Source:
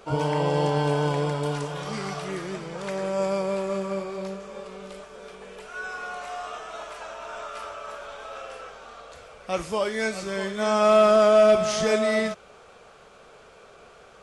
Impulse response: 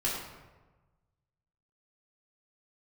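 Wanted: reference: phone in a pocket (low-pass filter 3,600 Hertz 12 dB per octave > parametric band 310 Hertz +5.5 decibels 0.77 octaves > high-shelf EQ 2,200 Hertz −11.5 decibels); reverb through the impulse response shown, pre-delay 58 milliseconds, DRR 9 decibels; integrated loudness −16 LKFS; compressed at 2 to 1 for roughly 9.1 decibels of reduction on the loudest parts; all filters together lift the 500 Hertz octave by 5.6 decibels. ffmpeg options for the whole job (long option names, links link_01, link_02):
-filter_complex "[0:a]equalizer=frequency=500:width_type=o:gain=7.5,acompressor=threshold=-26dB:ratio=2,asplit=2[link_01][link_02];[1:a]atrim=start_sample=2205,adelay=58[link_03];[link_02][link_03]afir=irnorm=-1:irlink=0,volume=-16dB[link_04];[link_01][link_04]amix=inputs=2:normalize=0,lowpass=3600,equalizer=frequency=310:width_type=o:width=0.77:gain=5.5,highshelf=frequency=2200:gain=-11.5,volume=11dB"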